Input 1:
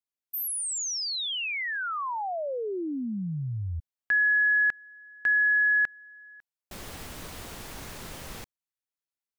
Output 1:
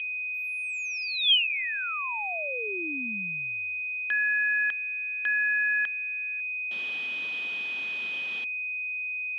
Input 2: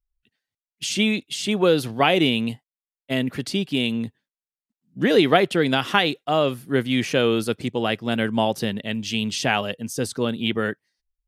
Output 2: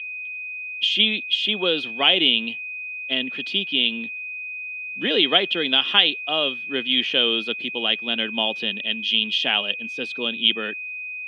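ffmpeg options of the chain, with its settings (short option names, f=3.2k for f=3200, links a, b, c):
-af "highpass=f=200:w=0.5412,highpass=f=200:w=1.3066,aeval=exprs='val(0)+0.0282*sin(2*PI*2500*n/s)':c=same,lowpass=f=3.2k:t=q:w=9.6,volume=-6.5dB"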